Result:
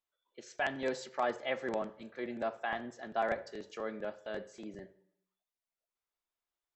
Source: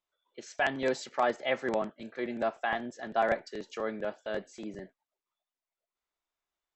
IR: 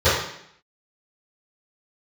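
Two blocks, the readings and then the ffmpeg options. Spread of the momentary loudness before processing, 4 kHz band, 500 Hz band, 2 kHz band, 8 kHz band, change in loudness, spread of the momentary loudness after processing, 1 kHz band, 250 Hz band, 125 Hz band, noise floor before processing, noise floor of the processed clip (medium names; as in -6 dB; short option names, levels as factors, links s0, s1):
14 LU, -5.0 dB, -5.0 dB, -5.0 dB, no reading, -5.0 dB, 14 LU, -5.0 dB, -5.0 dB, -5.0 dB, under -85 dBFS, under -85 dBFS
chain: -filter_complex "[0:a]asplit=2[s0][s1];[1:a]atrim=start_sample=2205,adelay=31[s2];[s1][s2]afir=irnorm=-1:irlink=0,volume=0.0119[s3];[s0][s3]amix=inputs=2:normalize=0,volume=0.562"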